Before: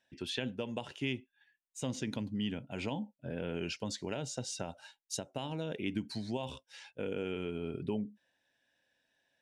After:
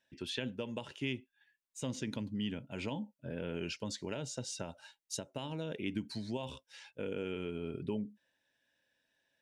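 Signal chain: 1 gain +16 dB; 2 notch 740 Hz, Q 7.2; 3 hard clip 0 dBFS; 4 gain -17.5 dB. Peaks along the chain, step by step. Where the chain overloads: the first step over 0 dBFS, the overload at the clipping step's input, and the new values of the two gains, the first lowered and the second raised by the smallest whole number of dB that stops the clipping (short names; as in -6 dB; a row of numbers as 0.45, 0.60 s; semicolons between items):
-5.5, -5.5, -5.5, -23.0 dBFS; no overload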